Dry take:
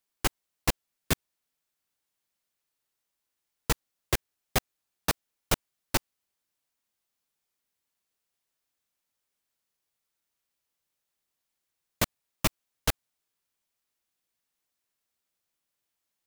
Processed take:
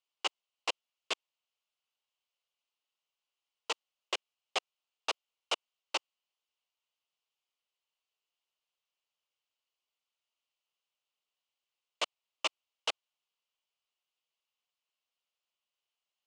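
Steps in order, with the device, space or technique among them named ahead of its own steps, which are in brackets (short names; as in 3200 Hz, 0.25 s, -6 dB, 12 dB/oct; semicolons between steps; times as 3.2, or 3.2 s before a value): phone speaker on a table (speaker cabinet 440–6700 Hz, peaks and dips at 1100 Hz +3 dB, 1700 Hz -9 dB, 2900 Hz +10 dB, 5800 Hz -3 dB); gain -5 dB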